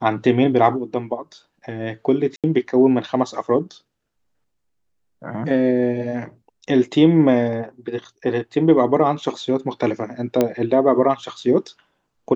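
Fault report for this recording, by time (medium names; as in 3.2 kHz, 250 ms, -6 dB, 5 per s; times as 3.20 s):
2.36–2.44 s: dropout 77 ms
10.41 s: pop -5 dBFS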